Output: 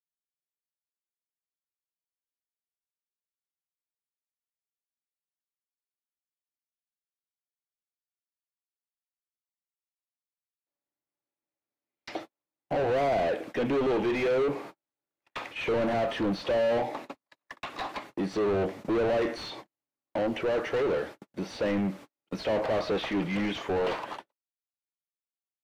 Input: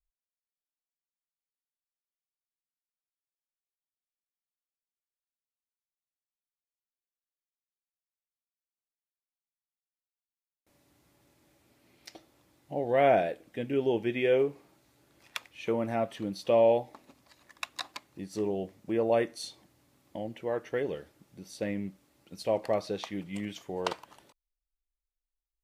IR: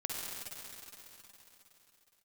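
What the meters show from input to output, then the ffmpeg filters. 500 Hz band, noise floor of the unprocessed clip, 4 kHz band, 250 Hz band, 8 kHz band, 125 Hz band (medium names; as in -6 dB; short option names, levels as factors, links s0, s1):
+1.0 dB, under -85 dBFS, +3.5 dB, +4.0 dB, no reading, +3.0 dB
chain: -filter_complex "[0:a]agate=range=0.00355:threshold=0.002:ratio=16:detection=peak,asplit=2[s0][s1];[s1]highpass=f=720:p=1,volume=79.4,asoftclip=type=tanh:threshold=0.237[s2];[s0][s2]amix=inputs=2:normalize=0,lowpass=f=1300:p=1,volume=0.501,acrossover=split=4600[s3][s4];[s4]acompressor=threshold=0.00251:ratio=4:attack=1:release=60[s5];[s3][s5]amix=inputs=2:normalize=0,acrossover=split=290|930|2100[s6][s7][s8][s9];[s8]asoftclip=type=hard:threshold=0.0188[s10];[s6][s7][s10][s9]amix=inputs=4:normalize=0,volume=0.501"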